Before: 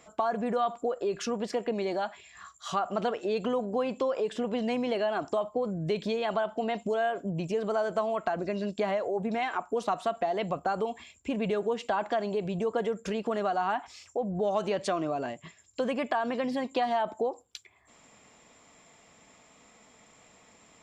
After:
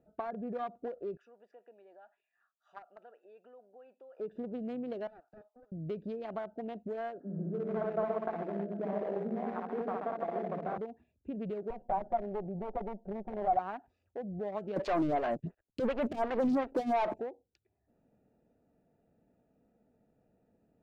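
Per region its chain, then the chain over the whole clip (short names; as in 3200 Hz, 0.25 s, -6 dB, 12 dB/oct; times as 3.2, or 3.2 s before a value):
1.17–4.2 HPF 1200 Hz + notch 4100 Hz, Q 8.7
5.07–5.72 Bessel high-pass 1300 Hz, order 4 + Doppler distortion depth 0.33 ms
7.2–10.78 switching spikes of -25 dBFS + Chebyshev band-pass 160–1700 Hz, order 5 + reverse bouncing-ball echo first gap 60 ms, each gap 1.2×, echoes 6, each echo -2 dB
11.7–13.59 minimum comb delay 5.3 ms + synth low-pass 740 Hz, resonance Q 3.7
14.76–17.2 sample leveller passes 5 + photocell phaser 2.8 Hz
whole clip: Wiener smoothing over 41 samples; LPF 1500 Hz 6 dB/oct; gain -6.5 dB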